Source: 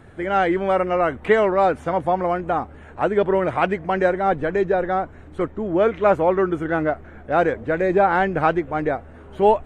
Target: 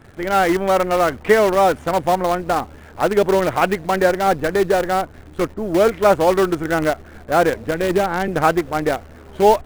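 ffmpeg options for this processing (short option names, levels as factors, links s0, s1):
-filter_complex "[0:a]asettb=1/sr,asplit=3[s0][s1][s2];[s0]atrim=end=7.674[s3];[s1]atrim=start=7.67:end=8.28,asetpts=PTS-STARTPTS,afade=t=in:d=0.004:c=qsin,afade=t=out:st=0.606:d=0.004:c=qsin,acrossover=split=360|3000[s4][s5][s6];[s5]acompressor=threshold=0.0501:ratio=2[s7];[s4][s7][s6]amix=inputs=3:normalize=0[s8];[s2]atrim=start=8.276[s9];[s3][s8]acrossfade=d=0.004:c1=hsin:c2=qsin[s10];[s10][s9]acrossfade=d=0.004:c1=qsin:c2=hsin,asplit=2[s11][s12];[s12]acrusher=bits=4:dc=4:mix=0:aa=0.000001,volume=0.562[s13];[s11][s13]amix=inputs=2:normalize=0,volume=0.891"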